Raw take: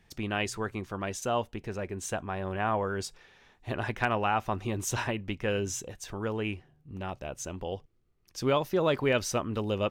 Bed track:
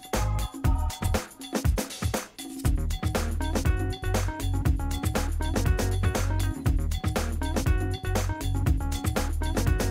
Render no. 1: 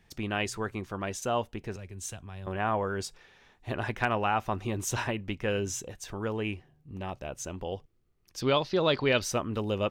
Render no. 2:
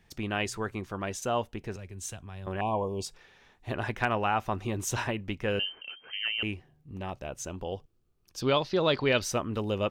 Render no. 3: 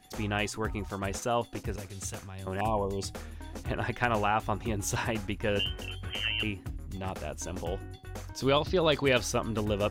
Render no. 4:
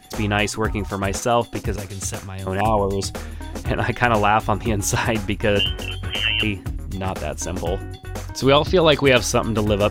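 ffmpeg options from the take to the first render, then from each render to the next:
-filter_complex "[0:a]asettb=1/sr,asplit=3[s0][s1][s2];[s0]atrim=end=1.764[s3];[s1]atrim=start=1.76:end=2.47,asetpts=PTS-STARTPTS,afade=t=in:d=0.004:c=qsin,afade=t=out:st=0.706:d=0.004:c=qsin,acrossover=split=140|3000[s4][s5][s6];[s5]acompressor=threshold=0.00126:ratio=2:attack=3.2:release=140:knee=2.83:detection=peak[s7];[s4][s7][s6]amix=inputs=3:normalize=0[s8];[s2]atrim=start=2.466[s9];[s3][s8]acrossfade=d=0.004:c1=hsin:c2=qsin[s10];[s10][s9]acrossfade=d=0.004:c1=qsin:c2=hsin,asettb=1/sr,asplit=3[s11][s12][s13];[s11]atrim=end=6.344[s14];[s12]atrim=start=6.34:end=7.13,asetpts=PTS-STARTPTS,afade=t=in:d=0.004:c=qsin,afade=t=out:st=0.786:d=0.004:c=qsin,bandreject=f=1400:w=10[s15];[s13]atrim=start=7.126[s16];[s14][s15]acrossfade=d=0.004:c1=hsin:c2=qsin[s17];[s17][s16]acrossfade=d=0.004:c1=qsin:c2=hsin,asettb=1/sr,asplit=3[s18][s19][s20];[s18]atrim=end=8.414[s21];[s19]atrim=start=8.41:end=9.22,asetpts=PTS-STARTPTS,afade=t=in:d=0.004:c=qsin,afade=t=out:st=0.806:d=0.004:c=qsin,lowpass=f=4400:t=q:w=4.9[s22];[s20]atrim=start=9.216[s23];[s21][s22]acrossfade=d=0.004:c1=hsin:c2=qsin[s24];[s24][s23]acrossfade=d=0.004:c1=qsin:c2=hsin"
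-filter_complex "[0:a]asettb=1/sr,asplit=3[s0][s1][s2];[s0]atrim=end=2.614[s3];[s1]atrim=start=2.61:end=3.06,asetpts=PTS-STARTPTS,afade=t=in:d=0.004:c=qsin,afade=t=out:st=0.446:d=0.004:c=qsin,asuperstop=centerf=1600:order=20:qfactor=1.3[s4];[s2]atrim=start=3.056[s5];[s3][s4]acrossfade=d=0.004:c1=hsin:c2=qsin[s6];[s6][s5]acrossfade=d=0.004:c1=qsin:c2=hsin,asettb=1/sr,asplit=3[s7][s8][s9];[s7]atrim=end=5.594[s10];[s8]atrim=start=5.59:end=6.43,asetpts=PTS-STARTPTS,afade=t=in:d=0.004:c=qsin,afade=t=out:st=0.836:d=0.004:c=qsin,lowpass=f=2700:t=q:w=0.5098,lowpass=f=2700:t=q:w=0.6013,lowpass=f=2700:t=q:w=0.9,lowpass=f=2700:t=q:w=2.563,afreqshift=-3200[s11];[s9]atrim=start=6.426[s12];[s10][s11]acrossfade=d=0.004:c1=hsin:c2=qsin[s13];[s13][s12]acrossfade=d=0.004:c1=qsin:c2=hsin,asettb=1/sr,asplit=3[s14][s15][s16];[s14]atrim=end=7.504[s17];[s15]atrim=start=7.5:end=8.49,asetpts=PTS-STARTPTS,afade=t=in:d=0.004:c=qsin,afade=t=out:st=0.986:d=0.004:c=qsin,equalizer=f=2000:w=5.2:g=-9[s18];[s16]atrim=start=8.486[s19];[s17][s18]acrossfade=d=0.004:c1=hsin:c2=qsin[s20];[s20][s19]acrossfade=d=0.004:c1=qsin:c2=hsin"
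-filter_complex "[1:a]volume=0.188[s0];[0:a][s0]amix=inputs=2:normalize=0"
-af "volume=3.35,alimiter=limit=0.794:level=0:latency=1"

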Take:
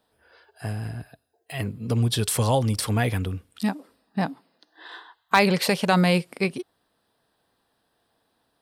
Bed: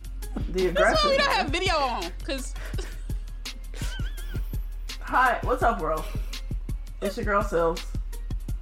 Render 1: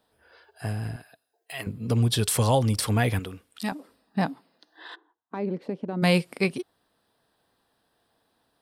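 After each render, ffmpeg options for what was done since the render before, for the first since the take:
-filter_complex "[0:a]asettb=1/sr,asplit=3[s0][s1][s2];[s0]atrim=end=0.964[s3];[s1]atrim=start=0.96:end=1.67,asetpts=PTS-STARTPTS,afade=t=in:d=0.004:c=qsin,afade=t=out:st=0.706:d=0.004:c=qsin,highpass=f=780:p=1[s4];[s2]atrim=start=1.666[s5];[s3][s4]acrossfade=d=0.004:c1=hsin:c2=qsin[s6];[s6][s5]acrossfade=d=0.004:c1=qsin:c2=hsin,asettb=1/sr,asplit=3[s7][s8][s9];[s7]atrim=end=3.194[s10];[s8]atrim=start=3.19:end=3.72,asetpts=PTS-STARTPTS,afade=t=in:d=0.004:c=qsin,afade=t=out:st=0.526:d=0.004:c=qsin,equalizer=f=81:t=o:w=2.8:g=-13.5[s11];[s9]atrim=start=3.716[s12];[s10][s11]acrossfade=d=0.004:c1=hsin:c2=qsin[s13];[s13][s12]acrossfade=d=0.004:c1=qsin:c2=hsin,asplit=3[s14][s15][s16];[s14]afade=t=out:st=4.94:d=0.02[s17];[s15]bandpass=f=290:t=q:w=2.9,afade=t=in:st=4.94:d=0.02,afade=t=out:st=6.02:d=0.02[s18];[s16]afade=t=in:st=6.02:d=0.02[s19];[s17][s18][s19]amix=inputs=3:normalize=0"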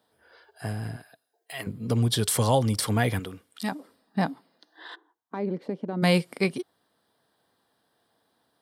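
-af "highpass=98,bandreject=f=2600:w=11"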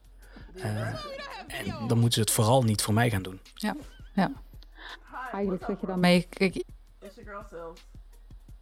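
-filter_complex "[1:a]volume=0.133[s0];[0:a][s0]amix=inputs=2:normalize=0"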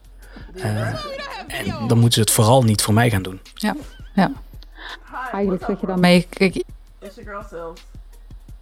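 -af "volume=2.82,alimiter=limit=0.794:level=0:latency=1"

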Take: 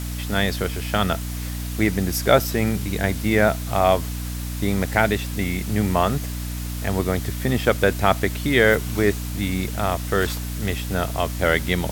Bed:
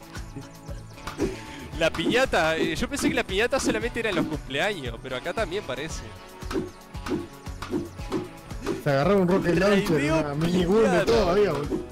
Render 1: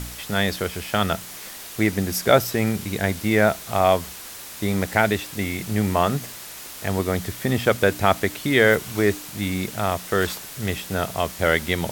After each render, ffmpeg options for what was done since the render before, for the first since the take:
-af "bandreject=f=60:t=h:w=4,bandreject=f=120:t=h:w=4,bandreject=f=180:t=h:w=4,bandreject=f=240:t=h:w=4,bandreject=f=300:t=h:w=4"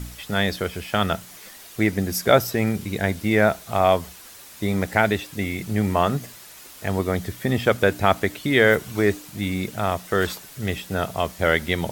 -af "afftdn=nr=7:nf=-38"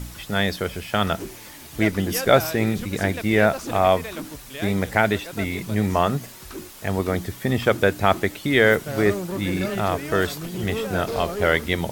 -filter_complex "[1:a]volume=0.376[s0];[0:a][s0]amix=inputs=2:normalize=0"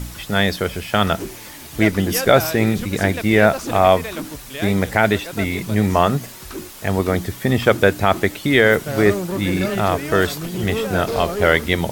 -af "volume=1.68,alimiter=limit=0.891:level=0:latency=1"

